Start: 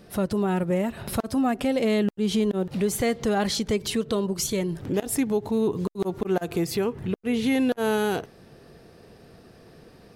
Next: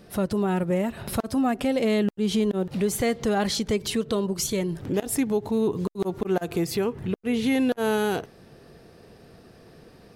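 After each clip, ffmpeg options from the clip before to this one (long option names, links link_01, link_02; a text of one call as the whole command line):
ffmpeg -i in.wav -af anull out.wav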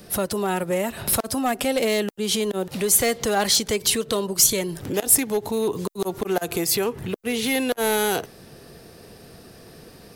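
ffmpeg -i in.wav -filter_complex "[0:a]acrossover=split=380|440|6300[link_01][link_02][link_03][link_04];[link_01]acompressor=threshold=-34dB:ratio=6[link_05];[link_05][link_02][link_03][link_04]amix=inputs=4:normalize=0,aeval=exprs='clip(val(0),-1,0.0841)':channel_layout=same,crystalizer=i=2:c=0,volume=4dB" out.wav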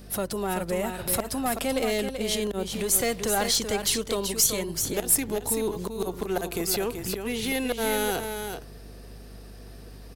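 ffmpeg -i in.wav -af "aeval=exprs='0.891*(cos(1*acos(clip(val(0)/0.891,-1,1)))-cos(1*PI/2))+0.0355*(cos(6*acos(clip(val(0)/0.891,-1,1)))-cos(6*PI/2))+0.0398*(cos(8*acos(clip(val(0)/0.891,-1,1)))-cos(8*PI/2))':channel_layout=same,aeval=exprs='val(0)+0.01*(sin(2*PI*50*n/s)+sin(2*PI*2*50*n/s)/2+sin(2*PI*3*50*n/s)/3+sin(2*PI*4*50*n/s)/4+sin(2*PI*5*50*n/s)/5)':channel_layout=same,aecho=1:1:383:0.447,volume=-5dB" out.wav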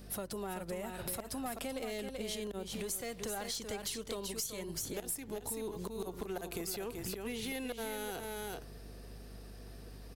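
ffmpeg -i in.wav -af "acompressor=threshold=-31dB:ratio=6,volume=-5.5dB" out.wav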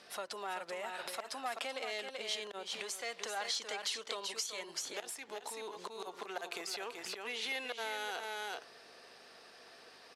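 ffmpeg -i in.wav -af "highpass=790,lowpass=5200,volume=6dB" out.wav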